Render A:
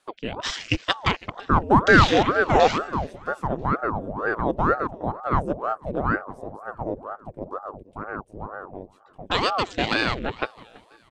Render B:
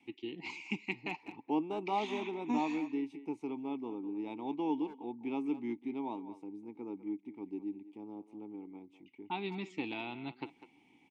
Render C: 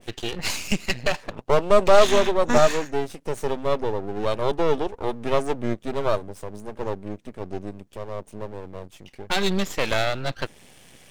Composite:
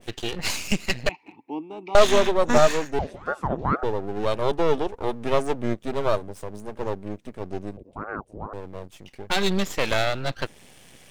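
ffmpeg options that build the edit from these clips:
-filter_complex "[0:a]asplit=2[a][b];[2:a]asplit=4[c][d][e][f];[c]atrim=end=1.092[g];[1:a]atrim=start=1.088:end=1.952[h];[d]atrim=start=1.948:end=2.992[i];[a]atrim=start=2.988:end=3.832[j];[e]atrim=start=3.828:end=7.772[k];[b]atrim=start=7.768:end=8.532[l];[f]atrim=start=8.528[m];[g][h]acrossfade=d=0.004:c1=hsin:c2=hsin[n];[n][i]acrossfade=d=0.004:c1=hsin:c2=hsin[o];[o][j]acrossfade=d=0.004:c1=hsin:c2=hsin[p];[p][k]acrossfade=d=0.004:c1=hsin:c2=hsin[q];[q][l]acrossfade=d=0.004:c1=hsin:c2=hsin[r];[r][m]acrossfade=d=0.004:c1=hsin:c2=hsin"

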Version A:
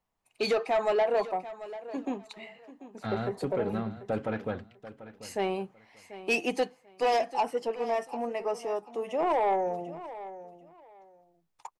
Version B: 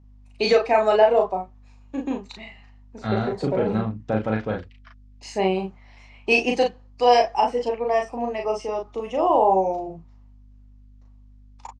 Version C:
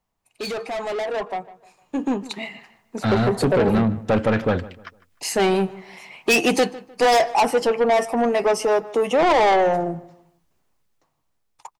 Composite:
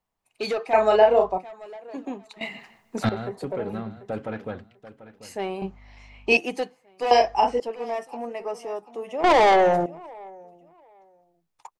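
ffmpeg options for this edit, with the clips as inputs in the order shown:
-filter_complex "[1:a]asplit=3[a][b][c];[2:a]asplit=2[d][e];[0:a]asplit=6[f][g][h][i][j][k];[f]atrim=end=0.732[l];[a]atrim=start=0.728:end=1.382[m];[g]atrim=start=1.378:end=2.412[n];[d]atrim=start=2.408:end=3.092[o];[h]atrim=start=3.088:end=5.622[p];[b]atrim=start=5.618:end=6.372[q];[i]atrim=start=6.368:end=7.112[r];[c]atrim=start=7.108:end=7.602[s];[j]atrim=start=7.598:end=9.242[t];[e]atrim=start=9.238:end=9.862[u];[k]atrim=start=9.858[v];[l][m]acrossfade=d=0.004:c1=hsin:c2=hsin[w];[w][n]acrossfade=d=0.004:c1=hsin:c2=hsin[x];[x][o]acrossfade=d=0.004:c1=hsin:c2=hsin[y];[y][p]acrossfade=d=0.004:c1=hsin:c2=hsin[z];[z][q]acrossfade=d=0.004:c1=hsin:c2=hsin[aa];[aa][r]acrossfade=d=0.004:c1=hsin:c2=hsin[ab];[ab][s]acrossfade=d=0.004:c1=hsin:c2=hsin[ac];[ac][t]acrossfade=d=0.004:c1=hsin:c2=hsin[ad];[ad][u]acrossfade=d=0.004:c1=hsin:c2=hsin[ae];[ae][v]acrossfade=d=0.004:c1=hsin:c2=hsin"

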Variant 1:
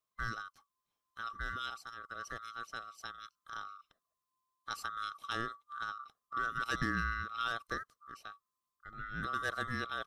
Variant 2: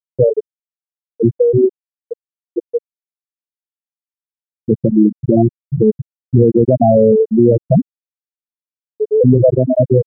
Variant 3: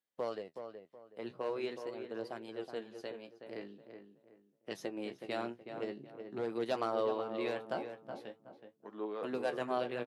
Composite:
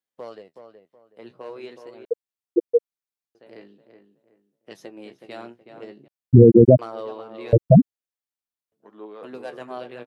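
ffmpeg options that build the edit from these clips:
-filter_complex "[1:a]asplit=3[a][b][c];[2:a]asplit=4[d][e][f][g];[d]atrim=end=2.052[h];[a]atrim=start=2.048:end=3.352[i];[e]atrim=start=3.348:end=6.082[j];[b]atrim=start=6.078:end=6.792[k];[f]atrim=start=6.788:end=7.532[l];[c]atrim=start=7.528:end=8.722[m];[g]atrim=start=8.718[n];[h][i]acrossfade=d=0.004:c1=hsin:c2=hsin[o];[o][j]acrossfade=d=0.004:c1=hsin:c2=hsin[p];[p][k]acrossfade=d=0.004:c1=hsin:c2=hsin[q];[q][l]acrossfade=d=0.004:c1=hsin:c2=hsin[r];[r][m]acrossfade=d=0.004:c1=hsin:c2=hsin[s];[s][n]acrossfade=d=0.004:c1=hsin:c2=hsin"

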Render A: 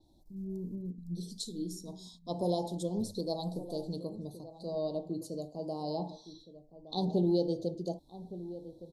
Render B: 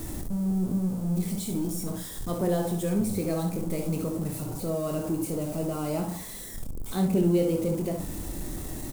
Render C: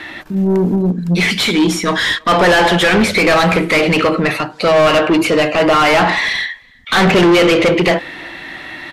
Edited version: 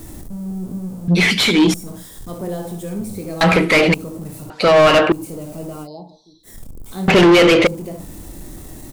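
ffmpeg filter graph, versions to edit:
-filter_complex "[2:a]asplit=4[a][b][c][d];[1:a]asplit=6[e][f][g][h][i][j];[e]atrim=end=1.082[k];[a]atrim=start=1.078:end=1.742[l];[f]atrim=start=1.738:end=3.412[m];[b]atrim=start=3.408:end=3.942[n];[g]atrim=start=3.938:end=4.502[o];[c]atrim=start=4.498:end=5.122[p];[h]atrim=start=5.118:end=5.88[q];[0:a]atrim=start=5.82:end=6.49[r];[i]atrim=start=6.43:end=7.082[s];[d]atrim=start=7.078:end=7.672[t];[j]atrim=start=7.668[u];[k][l]acrossfade=d=0.004:c1=hsin:c2=hsin[v];[v][m]acrossfade=d=0.004:c1=hsin:c2=hsin[w];[w][n]acrossfade=d=0.004:c1=hsin:c2=hsin[x];[x][o]acrossfade=d=0.004:c1=hsin:c2=hsin[y];[y][p]acrossfade=d=0.004:c1=hsin:c2=hsin[z];[z][q]acrossfade=d=0.004:c1=hsin:c2=hsin[aa];[aa][r]acrossfade=d=0.06:c1=tri:c2=tri[ab];[ab][s]acrossfade=d=0.06:c1=tri:c2=tri[ac];[ac][t]acrossfade=d=0.004:c1=hsin:c2=hsin[ad];[ad][u]acrossfade=d=0.004:c1=hsin:c2=hsin"

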